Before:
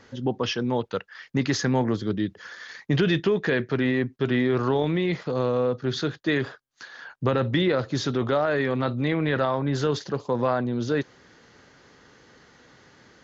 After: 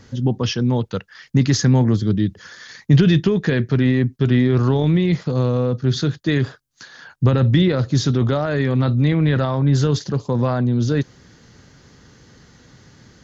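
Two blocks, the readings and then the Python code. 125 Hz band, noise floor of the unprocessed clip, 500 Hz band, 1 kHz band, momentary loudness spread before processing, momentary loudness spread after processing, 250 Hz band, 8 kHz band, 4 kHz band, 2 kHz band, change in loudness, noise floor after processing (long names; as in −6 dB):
+12.5 dB, −56 dBFS, +2.0 dB, 0.0 dB, 9 LU, 7 LU, +7.0 dB, can't be measured, +4.0 dB, +0.5 dB, +7.0 dB, −51 dBFS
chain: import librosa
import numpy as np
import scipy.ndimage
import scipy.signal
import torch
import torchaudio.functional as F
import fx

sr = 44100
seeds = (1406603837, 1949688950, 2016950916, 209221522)

y = fx.bass_treble(x, sr, bass_db=14, treble_db=9)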